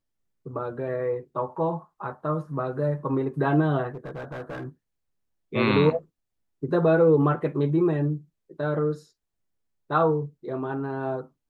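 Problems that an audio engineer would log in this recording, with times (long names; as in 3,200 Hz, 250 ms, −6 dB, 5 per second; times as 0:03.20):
0:03.94–0:04.64: clipping −31 dBFS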